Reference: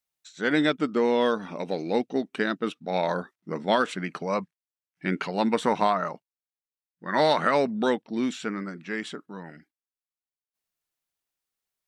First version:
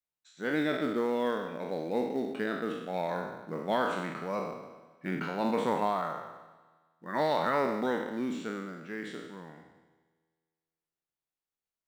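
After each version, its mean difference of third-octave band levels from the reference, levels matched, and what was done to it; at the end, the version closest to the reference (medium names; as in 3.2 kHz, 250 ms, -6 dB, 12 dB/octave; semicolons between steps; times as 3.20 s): 6.5 dB: spectral sustain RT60 1.07 s; treble shelf 2 kHz -8.5 dB; feedback comb 81 Hz, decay 2 s, harmonics all, mix 50%; in parallel at -11.5 dB: short-mantissa float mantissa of 2-bit; on the sum: trim -3.5 dB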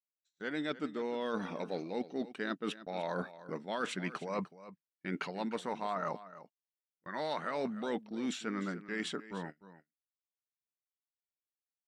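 5.0 dB: gate -40 dBFS, range -30 dB; bass shelf 70 Hz -6.5 dB; reverse; compression 10:1, threshold -33 dBFS, peak gain reduction 16 dB; reverse; delay 301 ms -15.5 dB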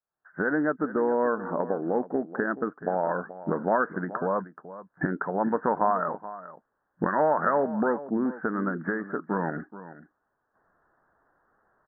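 9.0 dB: recorder AGC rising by 48 dB/s; steep low-pass 1.7 kHz 96 dB/octave; bass shelf 270 Hz -7.5 dB; on a send: delay 428 ms -15 dB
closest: second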